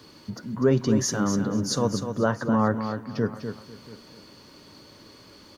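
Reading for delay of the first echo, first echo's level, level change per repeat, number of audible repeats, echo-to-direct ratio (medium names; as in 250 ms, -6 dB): 248 ms, -8.0 dB, no regular repeats, 4, -7.5 dB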